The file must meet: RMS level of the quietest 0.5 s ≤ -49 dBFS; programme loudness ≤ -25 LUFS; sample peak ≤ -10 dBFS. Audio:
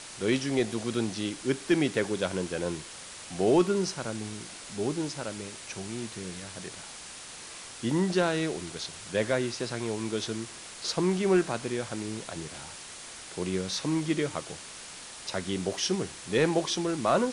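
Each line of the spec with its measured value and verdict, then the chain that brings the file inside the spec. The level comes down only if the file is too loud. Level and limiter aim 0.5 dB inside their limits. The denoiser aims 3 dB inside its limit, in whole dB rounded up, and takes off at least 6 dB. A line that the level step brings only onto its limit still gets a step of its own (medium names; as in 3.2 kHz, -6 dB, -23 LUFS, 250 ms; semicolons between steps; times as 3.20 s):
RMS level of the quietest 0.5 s -44 dBFS: fail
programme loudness -30.5 LUFS: pass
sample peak -12.5 dBFS: pass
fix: noise reduction 8 dB, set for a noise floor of -44 dBFS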